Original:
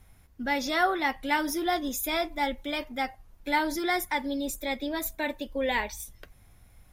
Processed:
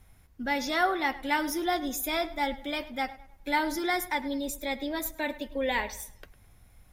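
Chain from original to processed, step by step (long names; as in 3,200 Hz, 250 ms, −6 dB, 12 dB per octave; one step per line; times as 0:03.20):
tape delay 103 ms, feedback 40%, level −16 dB, low-pass 3,900 Hz
level −1 dB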